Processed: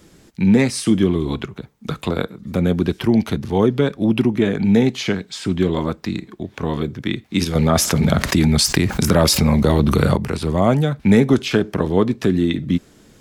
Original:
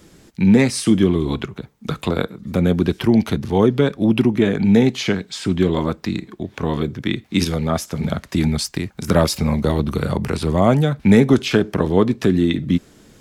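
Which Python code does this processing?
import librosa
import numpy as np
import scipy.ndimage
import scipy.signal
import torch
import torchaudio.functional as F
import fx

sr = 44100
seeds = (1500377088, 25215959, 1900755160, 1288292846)

y = fx.env_flatten(x, sr, amount_pct=70, at=(7.55, 10.16))
y = y * 10.0 ** (-1.0 / 20.0)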